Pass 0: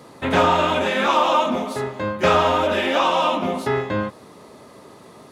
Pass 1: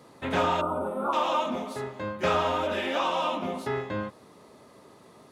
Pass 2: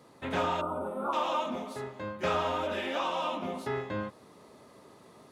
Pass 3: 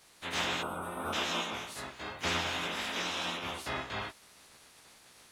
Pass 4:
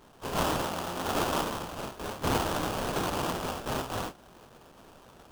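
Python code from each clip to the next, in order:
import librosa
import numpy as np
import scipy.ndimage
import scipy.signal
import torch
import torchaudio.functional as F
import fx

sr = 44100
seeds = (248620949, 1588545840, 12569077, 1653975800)

y1 = fx.spec_box(x, sr, start_s=0.61, length_s=0.52, low_hz=1500.0, high_hz=8000.0, gain_db=-28)
y1 = y1 * 10.0 ** (-8.5 / 20.0)
y2 = fx.rider(y1, sr, range_db=10, speed_s=2.0)
y2 = y2 * 10.0 ** (-5.0 / 20.0)
y3 = fx.spec_clip(y2, sr, under_db=27)
y3 = fx.chorus_voices(y3, sr, voices=2, hz=0.88, base_ms=15, depth_ms=3.5, mix_pct=45)
y4 = fx.sample_hold(y3, sr, seeds[0], rate_hz=2100.0, jitter_pct=20)
y4 = y4 * 10.0 ** (4.5 / 20.0)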